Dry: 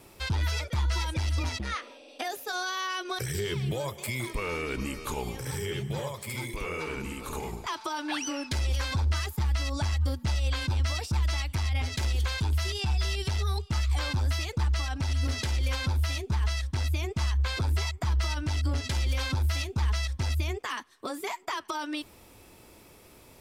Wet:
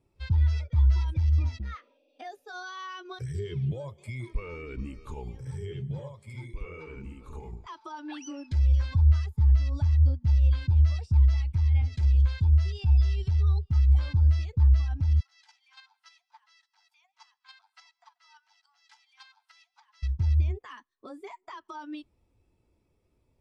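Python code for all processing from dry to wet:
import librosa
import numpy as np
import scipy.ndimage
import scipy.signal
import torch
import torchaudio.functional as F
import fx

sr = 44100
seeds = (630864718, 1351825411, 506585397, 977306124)

y = fx.chain(x, sr, fx.cheby1_highpass(hz=690.0, order=10),
    fx.echo_feedback(ms=136, feedback_pct=47, wet_db=-17.0),
    fx.chopper(hz=3.5, depth_pct=60, duty_pct=10), at=(15.2, 20.03))
y = scipy.signal.sosfilt(scipy.signal.butter(2, 9800.0, 'lowpass', fs=sr, output='sos'), y)
y = fx.low_shelf(y, sr, hz=150.0, db=6.5)
y = fx.spectral_expand(y, sr, expansion=1.5)
y = y * librosa.db_to_amplitude(2.5)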